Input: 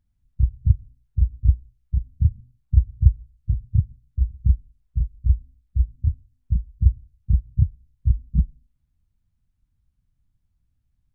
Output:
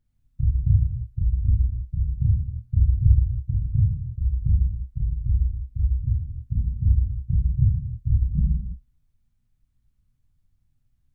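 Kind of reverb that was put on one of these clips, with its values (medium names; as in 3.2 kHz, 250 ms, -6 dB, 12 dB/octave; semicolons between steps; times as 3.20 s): gated-style reverb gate 380 ms falling, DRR -3 dB; trim -3 dB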